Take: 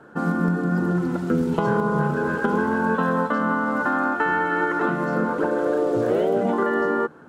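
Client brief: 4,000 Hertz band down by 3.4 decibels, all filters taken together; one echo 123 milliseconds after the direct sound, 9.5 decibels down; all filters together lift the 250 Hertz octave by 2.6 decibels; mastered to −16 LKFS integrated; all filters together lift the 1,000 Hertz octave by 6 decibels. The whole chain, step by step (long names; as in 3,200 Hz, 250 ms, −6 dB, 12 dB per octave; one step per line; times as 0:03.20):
parametric band 250 Hz +3 dB
parametric band 1,000 Hz +7.5 dB
parametric band 4,000 Hz −5.5 dB
single-tap delay 123 ms −9.5 dB
level +2.5 dB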